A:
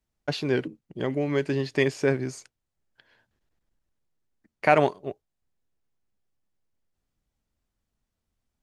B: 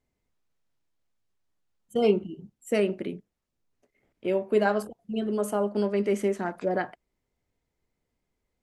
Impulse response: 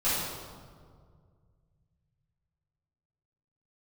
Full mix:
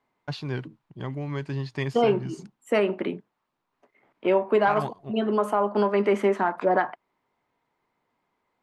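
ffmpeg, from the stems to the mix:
-filter_complex "[0:a]equalizer=f=68:w=0.55:g=-7,agate=range=-33dB:threshold=-55dB:ratio=3:detection=peak,lowshelf=f=170:g=11,volume=-16dB[a];[1:a]acrossover=split=240 2900:gain=0.0794 1 0.2[b][c][d];[b][c][d]amix=inputs=3:normalize=0,volume=1dB[e];[a][e]amix=inputs=2:normalize=0,equalizer=f=125:t=o:w=1:g=10,equalizer=f=500:t=o:w=1:g=-4,equalizer=f=1k:t=o:w=1:g=11,equalizer=f=4k:t=o:w=1:g=5,acontrast=44,alimiter=limit=-12dB:level=0:latency=1:release=235"

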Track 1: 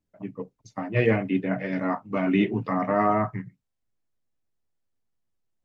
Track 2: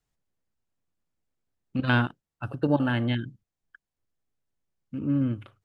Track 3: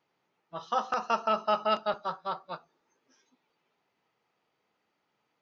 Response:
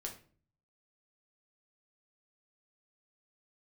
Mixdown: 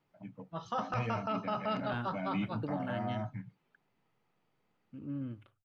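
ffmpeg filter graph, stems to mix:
-filter_complex "[0:a]aecho=1:1:1.3:0.85,acrossover=split=240|3000[a][b][c];[b]acompressor=threshold=-27dB:ratio=3[d];[a][d][c]amix=inputs=3:normalize=0,volume=-12dB[e];[1:a]volume=-14dB[f];[2:a]bass=f=250:g=12,treble=f=4k:g=-5,volume=-3dB[g];[e][f][g]amix=inputs=3:normalize=0,alimiter=level_in=1dB:limit=-24dB:level=0:latency=1:release=17,volume=-1dB"

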